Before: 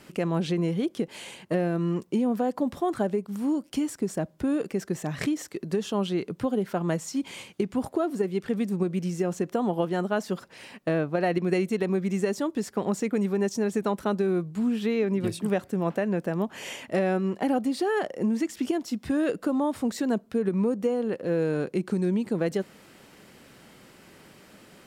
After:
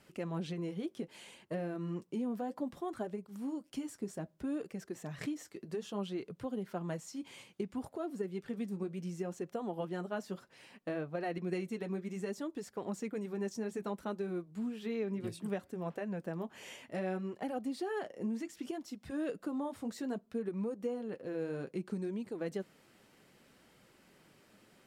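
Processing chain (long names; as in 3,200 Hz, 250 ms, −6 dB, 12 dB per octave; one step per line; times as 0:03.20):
flanger 0.63 Hz, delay 1.2 ms, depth 8.8 ms, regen −46%
level −8 dB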